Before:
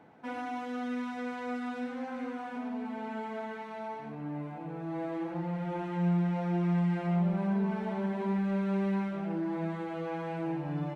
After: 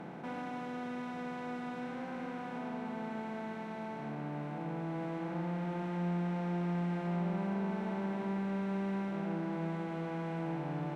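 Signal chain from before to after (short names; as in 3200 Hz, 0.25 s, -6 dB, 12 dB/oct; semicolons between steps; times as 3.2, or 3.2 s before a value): per-bin compression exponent 0.4; gain -8 dB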